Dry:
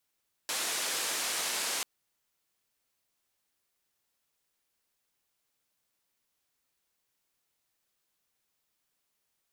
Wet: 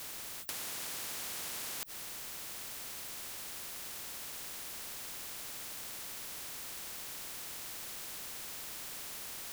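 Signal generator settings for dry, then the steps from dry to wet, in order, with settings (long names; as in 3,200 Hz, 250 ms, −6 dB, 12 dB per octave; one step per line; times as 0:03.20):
band-limited noise 350–9,600 Hz, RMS −33 dBFS 1.34 s
downward compressor, threshold −38 dBFS
every bin compressed towards the loudest bin 10 to 1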